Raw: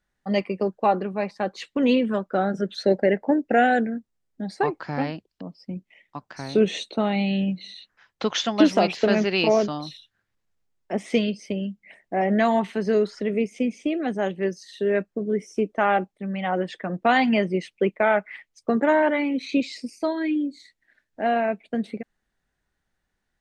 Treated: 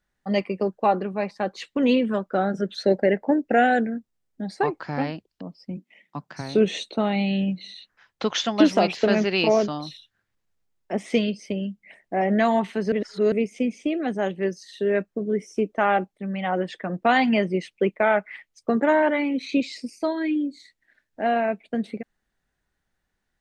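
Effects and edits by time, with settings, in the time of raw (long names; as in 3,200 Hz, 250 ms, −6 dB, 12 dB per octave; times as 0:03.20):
0:05.76–0:06.40: high-pass with resonance 260 Hz → 130 Hz, resonance Q 2.8
0:12.92–0:13.32: reverse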